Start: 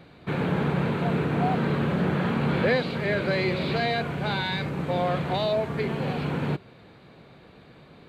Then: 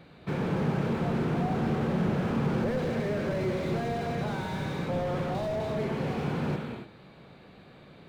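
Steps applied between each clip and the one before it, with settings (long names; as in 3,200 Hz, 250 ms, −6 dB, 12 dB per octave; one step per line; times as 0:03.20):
reverb whose tail is shaped and stops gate 320 ms flat, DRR 3 dB
slew-rate limiting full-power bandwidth 30 Hz
level −3 dB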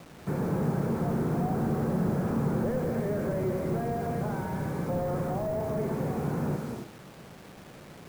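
Bessel low-pass filter 1,300 Hz, order 4
in parallel at −2.5 dB: downward compressor 8 to 1, threshold −36 dBFS, peak gain reduction 13 dB
on the sum: bit reduction 8 bits
level −1.5 dB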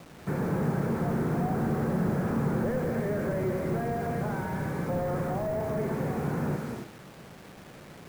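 dynamic equaliser 1,800 Hz, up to +5 dB, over −55 dBFS, Q 1.5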